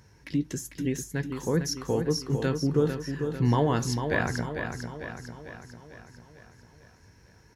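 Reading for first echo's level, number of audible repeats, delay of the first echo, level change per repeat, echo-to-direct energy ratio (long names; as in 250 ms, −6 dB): −7.0 dB, 6, 448 ms, −5.0 dB, −5.5 dB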